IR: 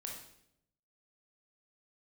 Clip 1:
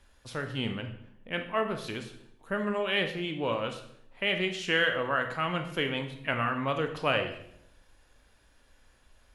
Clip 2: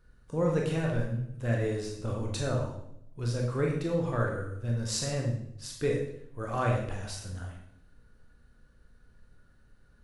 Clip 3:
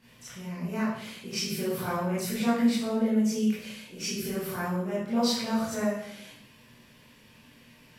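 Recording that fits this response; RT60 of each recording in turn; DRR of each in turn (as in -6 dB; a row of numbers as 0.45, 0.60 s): 2; 0.75, 0.75, 0.75 s; 5.5, -1.0, -11.0 dB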